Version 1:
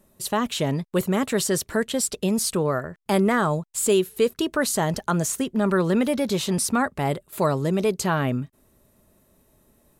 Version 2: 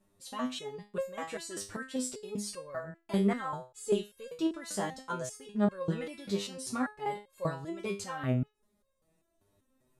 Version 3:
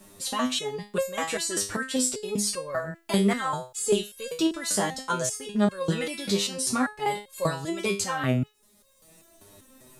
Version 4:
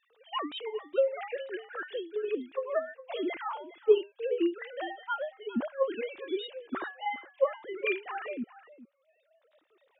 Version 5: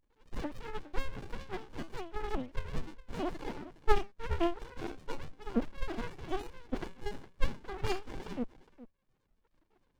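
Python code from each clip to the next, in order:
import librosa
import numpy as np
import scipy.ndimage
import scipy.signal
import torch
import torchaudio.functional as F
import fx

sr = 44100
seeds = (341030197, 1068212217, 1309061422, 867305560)

y1 = scipy.signal.sosfilt(scipy.signal.bessel(4, 8400.0, 'lowpass', norm='mag', fs=sr, output='sos'), x)
y1 = fx.resonator_held(y1, sr, hz=5.1, low_hz=100.0, high_hz=540.0)
y2 = fx.high_shelf(y1, sr, hz=2600.0, db=9.0)
y2 = fx.band_squash(y2, sr, depth_pct=40)
y2 = y2 * librosa.db_to_amplitude(6.5)
y3 = fx.sine_speech(y2, sr)
y3 = y3 + 10.0 ** (-16.5 / 20.0) * np.pad(y3, (int(412 * sr / 1000.0), 0))[:len(y3)]
y3 = y3 * librosa.db_to_amplitude(-5.0)
y4 = fx.running_max(y3, sr, window=65)
y4 = y4 * librosa.db_to_amplitude(4.0)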